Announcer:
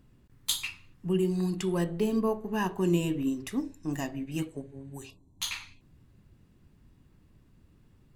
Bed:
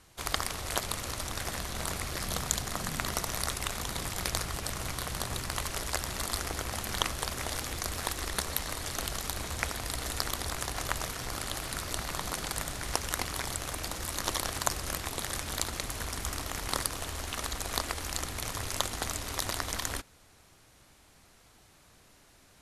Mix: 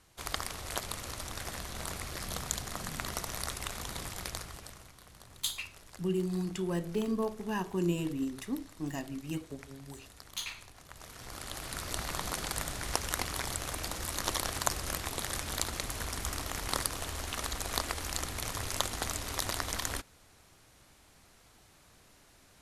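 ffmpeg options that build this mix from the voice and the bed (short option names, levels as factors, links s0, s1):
-filter_complex "[0:a]adelay=4950,volume=0.596[s0];[1:a]volume=5.31,afade=t=out:st=4:d=0.91:silence=0.16788,afade=t=in:st=10.9:d=1.15:silence=0.112202[s1];[s0][s1]amix=inputs=2:normalize=0"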